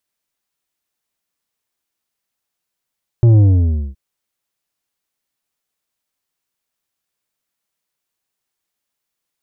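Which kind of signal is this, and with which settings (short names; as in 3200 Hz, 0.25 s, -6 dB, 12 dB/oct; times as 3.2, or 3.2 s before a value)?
sub drop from 120 Hz, over 0.72 s, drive 8 dB, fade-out 0.57 s, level -7 dB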